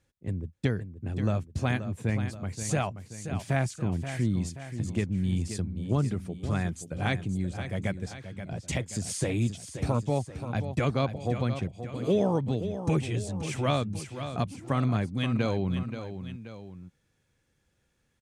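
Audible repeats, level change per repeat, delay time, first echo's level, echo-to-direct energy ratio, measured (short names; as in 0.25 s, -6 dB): 2, -5.5 dB, 0.529 s, -10.0 dB, -9.0 dB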